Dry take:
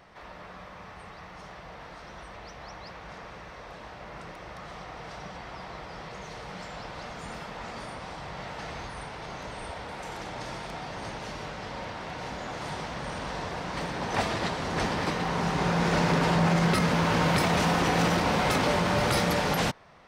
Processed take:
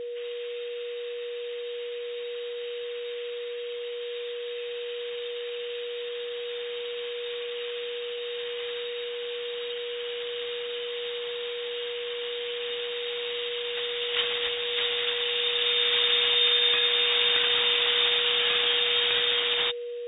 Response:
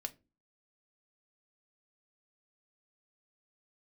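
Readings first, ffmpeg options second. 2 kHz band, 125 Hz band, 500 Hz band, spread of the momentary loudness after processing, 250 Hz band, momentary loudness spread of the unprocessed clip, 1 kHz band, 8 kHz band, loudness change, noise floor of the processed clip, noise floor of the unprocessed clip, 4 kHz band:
+1.5 dB, under -25 dB, +2.5 dB, 14 LU, under -25 dB, 20 LU, -11.0 dB, under -40 dB, +2.0 dB, -35 dBFS, -46 dBFS, +13.5 dB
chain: -af "lowpass=f=3200:t=q:w=0.5098,lowpass=f=3200:t=q:w=0.6013,lowpass=f=3200:t=q:w=0.9,lowpass=f=3200:t=q:w=2.563,afreqshift=-3800,aeval=exprs='val(0)+0.0251*sin(2*PI*480*n/s)':c=same"

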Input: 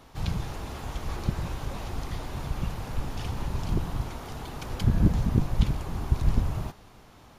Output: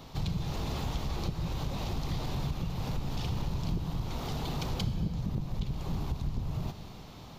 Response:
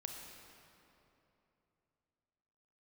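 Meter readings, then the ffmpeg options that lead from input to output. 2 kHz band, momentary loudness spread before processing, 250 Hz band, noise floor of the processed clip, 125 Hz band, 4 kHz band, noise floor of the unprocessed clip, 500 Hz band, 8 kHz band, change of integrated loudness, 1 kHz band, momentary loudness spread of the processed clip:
-4.5 dB, 12 LU, -4.0 dB, -47 dBFS, -4.5 dB, +1.5 dB, -53 dBFS, -3.0 dB, -2.5 dB, -4.5 dB, -3.0 dB, 3 LU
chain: -filter_complex "[0:a]equalizer=f=160:t=o:w=0.67:g=7,equalizer=f=1600:t=o:w=0.67:g=-6,equalizer=f=4000:t=o:w=0.67:g=5,equalizer=f=10000:t=o:w=0.67:g=-11,acompressor=threshold=0.0282:ratio=6,asoftclip=type=tanh:threshold=0.0473,asplit=2[s0][s1];[1:a]atrim=start_sample=2205,afade=t=out:st=0.45:d=0.01,atrim=end_sample=20286,highshelf=f=4300:g=9[s2];[s1][s2]afir=irnorm=-1:irlink=0,volume=0.75[s3];[s0][s3]amix=inputs=2:normalize=0"

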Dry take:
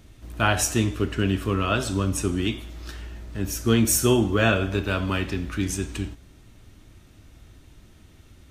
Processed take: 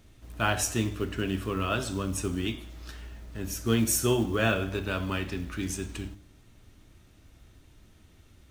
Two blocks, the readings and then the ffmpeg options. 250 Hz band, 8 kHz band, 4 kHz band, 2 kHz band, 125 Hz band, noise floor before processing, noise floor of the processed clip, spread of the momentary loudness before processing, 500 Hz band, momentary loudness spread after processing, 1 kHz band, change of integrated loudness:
-6.0 dB, -5.0 dB, -5.0 dB, -5.0 dB, -6.5 dB, -52 dBFS, -57 dBFS, 16 LU, -5.0 dB, 18 LU, -5.0 dB, -5.5 dB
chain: -af "bandreject=f=50:t=h:w=6,bandreject=f=100:t=h:w=6,bandreject=f=150:t=h:w=6,bandreject=f=200:t=h:w=6,bandreject=f=250:t=h:w=6,bandreject=f=300:t=h:w=6,bandreject=f=350:t=h:w=6,acrusher=bits=7:mode=log:mix=0:aa=0.000001,volume=0.562"

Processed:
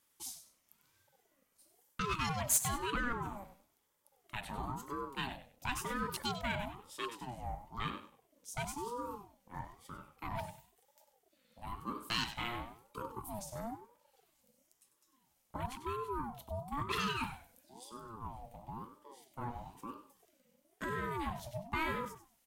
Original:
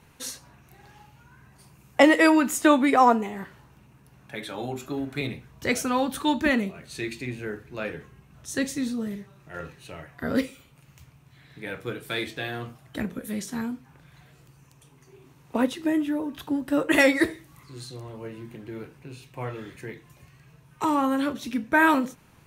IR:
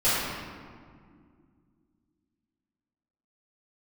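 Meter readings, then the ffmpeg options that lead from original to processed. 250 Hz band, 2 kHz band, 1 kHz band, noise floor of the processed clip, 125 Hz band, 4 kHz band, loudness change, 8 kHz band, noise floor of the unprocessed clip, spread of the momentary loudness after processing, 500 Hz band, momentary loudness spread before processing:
-20.0 dB, -15.0 dB, -12.0 dB, -76 dBFS, -5.5 dB, -7.5 dB, -14.5 dB, -3.5 dB, -56 dBFS, 15 LU, -17.5 dB, 21 LU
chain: -af "afwtdn=0.0178,alimiter=limit=0.168:level=0:latency=1:release=150,lowshelf=f=790:t=q:w=1.5:g=9.5,areverse,acompressor=threshold=0.141:ratio=6,areverse,aderivative,asoftclip=type=tanh:threshold=0.0282,aecho=1:1:97|194|291:0.282|0.0676|0.0162,aeval=exprs='val(0)*sin(2*PI*550*n/s+550*0.35/1*sin(2*PI*1*n/s))':c=same,volume=3.35"

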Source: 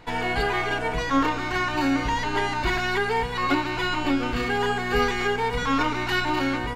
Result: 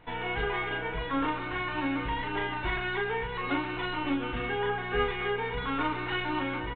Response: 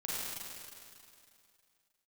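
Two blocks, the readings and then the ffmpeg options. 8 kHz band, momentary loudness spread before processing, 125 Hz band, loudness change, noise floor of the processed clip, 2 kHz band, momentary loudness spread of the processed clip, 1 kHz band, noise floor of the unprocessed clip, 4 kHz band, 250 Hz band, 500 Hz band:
under -40 dB, 2 LU, -6.0 dB, -6.5 dB, -35 dBFS, -6.0 dB, 3 LU, -7.5 dB, -29 dBFS, -7.5 dB, -7.0 dB, -5.5 dB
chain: -filter_complex "[0:a]asplit=2[s0][s1];[s1]adelay=39,volume=0.562[s2];[s0][s2]amix=inputs=2:normalize=0,asplit=2[s3][s4];[1:a]atrim=start_sample=2205,adelay=137[s5];[s4][s5]afir=irnorm=-1:irlink=0,volume=0.106[s6];[s3][s6]amix=inputs=2:normalize=0,aresample=8000,aresample=44100,volume=0.422"

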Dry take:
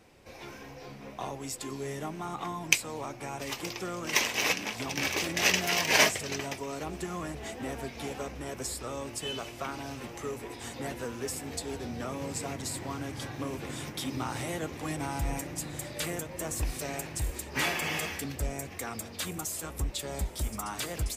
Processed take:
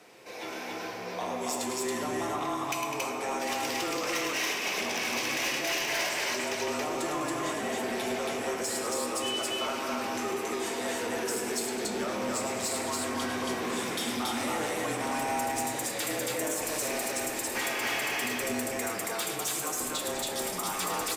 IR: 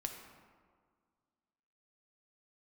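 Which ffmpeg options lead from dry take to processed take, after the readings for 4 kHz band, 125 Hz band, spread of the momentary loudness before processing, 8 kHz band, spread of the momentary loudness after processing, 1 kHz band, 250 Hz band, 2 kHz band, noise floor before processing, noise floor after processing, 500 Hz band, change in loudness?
+1.0 dB, -8.5 dB, 12 LU, +2.0 dB, 3 LU, +5.0 dB, +2.5 dB, +0.5 dB, -46 dBFS, -37 dBFS, +4.5 dB, +2.0 dB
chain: -filter_complex "[0:a]highpass=380,afreqshift=-29,acompressor=threshold=0.0158:ratio=5,aecho=1:1:105|204.1|277:0.398|0.251|0.891[s0];[1:a]atrim=start_sample=2205[s1];[s0][s1]afir=irnorm=-1:irlink=0,asoftclip=type=tanh:threshold=0.0251,volume=2.66"

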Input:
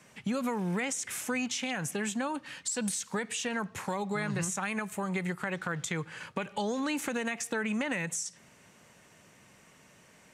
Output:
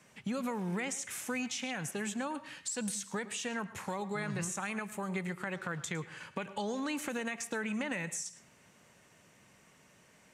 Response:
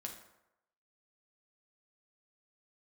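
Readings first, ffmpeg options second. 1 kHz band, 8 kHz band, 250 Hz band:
-4.0 dB, -4.0 dB, -4.0 dB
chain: -filter_complex "[0:a]asplit=2[s0][s1];[1:a]atrim=start_sample=2205,asetrate=79380,aresample=44100,adelay=108[s2];[s1][s2]afir=irnorm=-1:irlink=0,volume=0.422[s3];[s0][s3]amix=inputs=2:normalize=0,volume=0.631"

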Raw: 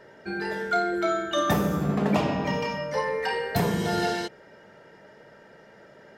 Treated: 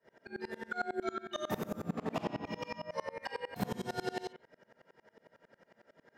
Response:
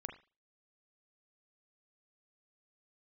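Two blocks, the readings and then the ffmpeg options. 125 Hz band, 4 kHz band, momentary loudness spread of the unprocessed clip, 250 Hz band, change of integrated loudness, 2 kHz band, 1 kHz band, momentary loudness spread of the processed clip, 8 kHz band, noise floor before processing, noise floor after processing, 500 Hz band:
-15.5 dB, -13.0 dB, 7 LU, -13.5 dB, -13.0 dB, -12.5 dB, -12.5 dB, 6 LU, -13.5 dB, -52 dBFS, -76 dBFS, -12.5 dB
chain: -filter_complex "[0:a]afreqshift=23,asplit=2[s0][s1];[1:a]atrim=start_sample=2205,adelay=46[s2];[s1][s2]afir=irnorm=-1:irlink=0,volume=0.944[s3];[s0][s3]amix=inputs=2:normalize=0,aeval=exprs='val(0)*pow(10,-27*if(lt(mod(-11*n/s,1),2*abs(-11)/1000),1-mod(-11*n/s,1)/(2*abs(-11)/1000),(mod(-11*n/s,1)-2*abs(-11)/1000)/(1-2*abs(-11)/1000))/20)':c=same,volume=0.473"

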